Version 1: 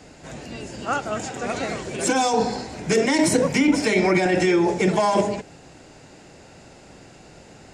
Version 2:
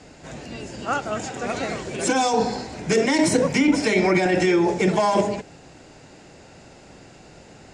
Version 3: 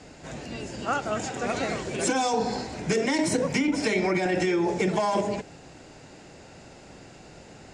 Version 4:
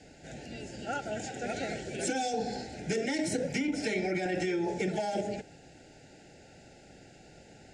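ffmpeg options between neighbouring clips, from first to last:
-af "lowpass=9300"
-af "acompressor=threshold=0.1:ratio=6,volume=0.891"
-af "asuperstop=centerf=1100:order=20:qfactor=2.3,volume=0.473"

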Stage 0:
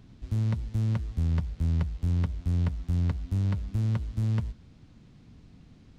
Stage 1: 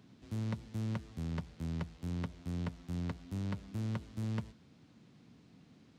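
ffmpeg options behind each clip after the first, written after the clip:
-af "highpass=170,volume=0.708"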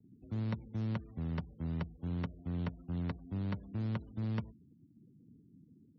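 -af "afftfilt=real='re*gte(hypot(re,im),0.002)':imag='im*gte(hypot(re,im),0.002)':win_size=1024:overlap=0.75,agate=range=0.0224:threshold=0.00112:ratio=3:detection=peak,volume=1.12"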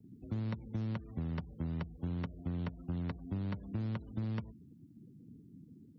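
-af "acompressor=threshold=0.0112:ratio=6,volume=1.88"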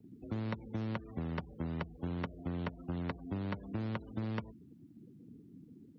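-af "bass=f=250:g=-9,treble=f=4000:g=-6,volume=2"

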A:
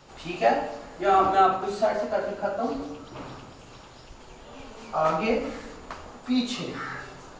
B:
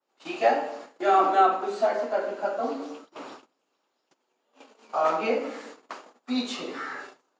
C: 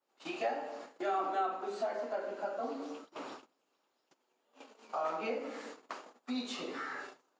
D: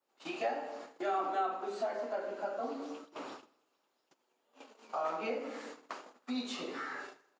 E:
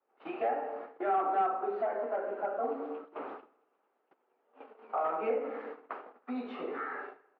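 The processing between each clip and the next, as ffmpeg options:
-af "agate=range=0.0447:threshold=0.01:ratio=16:detection=peak,highpass=f=260:w=0.5412,highpass=f=260:w=1.3066,adynamicequalizer=threshold=0.00891:dfrequency=2700:dqfactor=0.7:tfrequency=2700:tqfactor=0.7:attack=5:release=100:ratio=0.375:range=3:mode=cutabove:tftype=highshelf"
-af "acompressor=threshold=0.0158:ratio=2,volume=0.708"
-af "aecho=1:1:79|158|237|316:0.0841|0.0471|0.0264|0.0148"
-af "asoftclip=type=hard:threshold=0.0335,highpass=140,equalizer=f=150:t=q:w=4:g=-4,equalizer=f=440:t=q:w=4:g=8,equalizer=f=760:t=q:w=4:g=6,equalizer=f=1300:t=q:w=4:g=4,lowpass=f=2300:w=0.5412,lowpass=f=2300:w=1.3066"

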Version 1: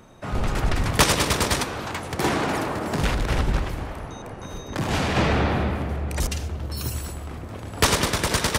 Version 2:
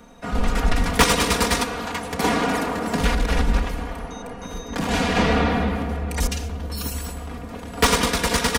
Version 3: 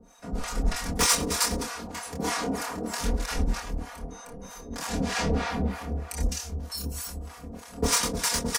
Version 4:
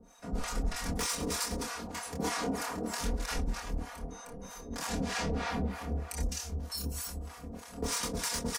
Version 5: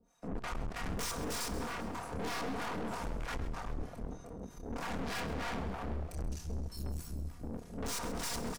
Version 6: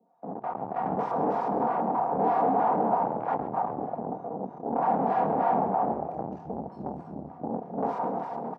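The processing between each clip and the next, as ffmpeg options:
-filter_complex "[0:a]aecho=1:1:4.2:0.89,acrossover=split=350|3100[s0][s1][s2];[s2]asoftclip=type=tanh:threshold=0.126[s3];[s0][s1][s3]amix=inputs=3:normalize=0"
-filter_complex "[0:a]highshelf=f=4300:t=q:w=1.5:g=6.5,acrossover=split=680[s0][s1];[s0]aeval=exprs='val(0)*(1-1/2+1/2*cos(2*PI*3.2*n/s))':c=same[s2];[s1]aeval=exprs='val(0)*(1-1/2-1/2*cos(2*PI*3.2*n/s))':c=same[s3];[s2][s3]amix=inputs=2:normalize=0,asplit=2[s4][s5];[s5]adelay=26,volume=0.631[s6];[s4][s6]amix=inputs=2:normalize=0,volume=0.562"
-af "alimiter=limit=0.1:level=0:latency=1:release=168,volume=0.708"
-filter_complex "[0:a]afwtdn=0.01,aeval=exprs='(tanh(158*val(0)+0.7)-tanh(0.7))/158':c=same,asplit=2[s0][s1];[s1]asplit=7[s2][s3][s4][s5][s6][s7][s8];[s2]adelay=132,afreqshift=-55,volume=0.2[s9];[s3]adelay=264,afreqshift=-110,volume=0.123[s10];[s4]adelay=396,afreqshift=-165,volume=0.0767[s11];[s5]adelay=528,afreqshift=-220,volume=0.0473[s12];[s6]adelay=660,afreqshift=-275,volume=0.0295[s13];[s7]adelay=792,afreqshift=-330,volume=0.0182[s14];[s8]adelay=924,afreqshift=-385,volume=0.0114[s15];[s9][s10][s11][s12][s13][s14][s15]amix=inputs=7:normalize=0[s16];[s0][s16]amix=inputs=2:normalize=0,volume=2.37"
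-af "lowpass=f=800:t=q:w=4.9,dynaudnorm=f=120:g=11:m=2.51,highpass=f=150:w=0.5412,highpass=f=150:w=1.3066,volume=1.12"

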